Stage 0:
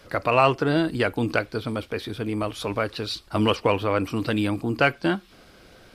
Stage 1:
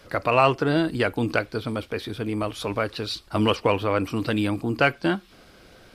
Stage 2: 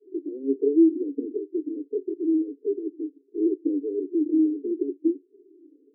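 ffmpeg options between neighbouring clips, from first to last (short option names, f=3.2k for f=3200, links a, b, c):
-af anull
-af "afftfilt=real='re*pow(10,21/40*sin(2*PI*(1.1*log(max(b,1)*sr/1024/100)/log(2)-(-1.5)*(pts-256)/sr)))':imag='im*pow(10,21/40*sin(2*PI*(1.1*log(max(b,1)*sr/1024/100)/log(2)-(-1.5)*(pts-256)/sr)))':win_size=1024:overlap=0.75,asuperpass=centerf=340:order=12:qfactor=2.2,volume=1.5dB"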